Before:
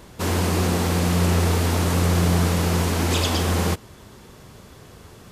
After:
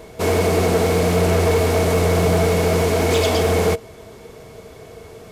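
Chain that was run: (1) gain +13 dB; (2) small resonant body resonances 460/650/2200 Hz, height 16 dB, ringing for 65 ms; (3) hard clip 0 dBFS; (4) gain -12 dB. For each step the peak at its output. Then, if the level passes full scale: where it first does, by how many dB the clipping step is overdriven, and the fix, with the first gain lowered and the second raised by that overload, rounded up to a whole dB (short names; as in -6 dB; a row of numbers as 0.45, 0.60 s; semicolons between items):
+4.5, +9.0, 0.0, -12.0 dBFS; step 1, 9.0 dB; step 1 +4 dB, step 4 -3 dB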